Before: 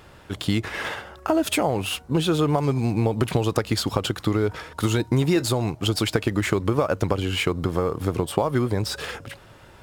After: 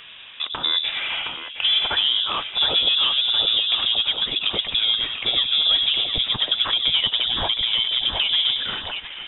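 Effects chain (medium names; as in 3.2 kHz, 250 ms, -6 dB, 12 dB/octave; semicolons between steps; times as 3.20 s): gliding tape speed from 73% -> 139%; high-pass 310 Hz 6 dB/octave; distance through air 210 m; in parallel at -0.5 dB: compression, threshold -31 dBFS, peak gain reduction 12.5 dB; on the sum: saturation -16.5 dBFS, distortion -13 dB; dynamic bell 1.6 kHz, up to -6 dB, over -42 dBFS, Q 0.94; on a send: two-band feedback delay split 690 Hz, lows 96 ms, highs 716 ms, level -5.5 dB; on the sum: frequency inversion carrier 3.7 kHz; trim +4.5 dB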